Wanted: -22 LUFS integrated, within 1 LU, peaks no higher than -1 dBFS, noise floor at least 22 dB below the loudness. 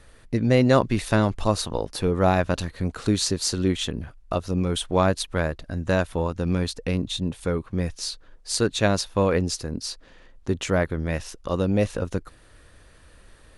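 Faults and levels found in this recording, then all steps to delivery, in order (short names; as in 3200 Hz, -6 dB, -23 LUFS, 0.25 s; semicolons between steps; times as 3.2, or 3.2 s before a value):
loudness -24.5 LUFS; peak -4.5 dBFS; loudness target -22.0 LUFS
-> gain +2.5 dB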